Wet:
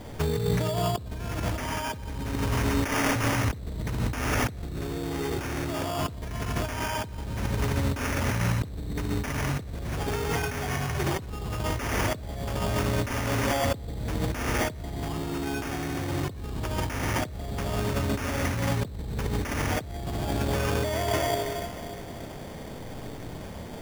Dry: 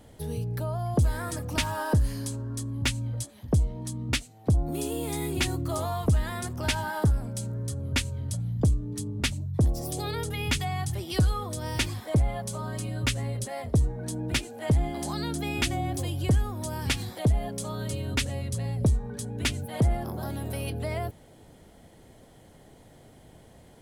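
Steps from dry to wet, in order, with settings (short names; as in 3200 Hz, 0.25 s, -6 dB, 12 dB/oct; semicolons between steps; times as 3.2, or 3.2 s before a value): 2.63–3.16 HPF 290 Hz 12 dB/oct; Schroeder reverb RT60 2.3 s, combs from 28 ms, DRR -0.5 dB; negative-ratio compressor -34 dBFS, ratio -1; sample-and-hold 11×; gain +4 dB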